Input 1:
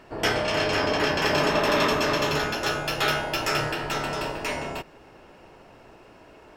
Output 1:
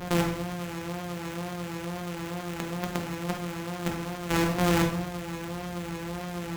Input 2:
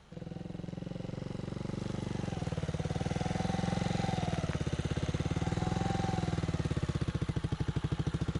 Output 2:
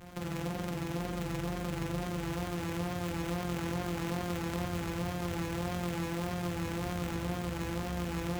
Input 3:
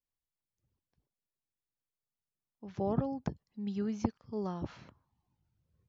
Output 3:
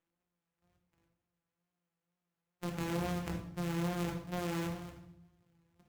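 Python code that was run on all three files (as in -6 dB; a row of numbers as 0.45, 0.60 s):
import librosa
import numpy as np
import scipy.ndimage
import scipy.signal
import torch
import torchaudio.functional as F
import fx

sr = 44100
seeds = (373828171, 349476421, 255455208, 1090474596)

y = np.r_[np.sort(x[:len(x) // 256 * 256].reshape(-1, 256), axis=1).ravel(), x[len(x) // 256 * 256:]]
y = fx.over_compress(y, sr, threshold_db=-36.0, ratio=-1.0)
y = fx.hpss(y, sr, part='harmonic', gain_db=6)
y = fx.wow_flutter(y, sr, seeds[0], rate_hz=2.1, depth_cents=57.0)
y = fx.level_steps(y, sr, step_db=13)
y = scipy.signal.sosfilt(scipy.signal.butter(2, 50.0, 'highpass', fs=sr, output='sos'), y)
y = fx.high_shelf(y, sr, hz=3700.0, db=11.0)
y = fx.room_shoebox(y, sr, seeds[1], volume_m3=170.0, walls='mixed', distance_m=0.93)
y = fx.running_max(y, sr, window=9)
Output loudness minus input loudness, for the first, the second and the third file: -6.5, -0.5, -1.0 LU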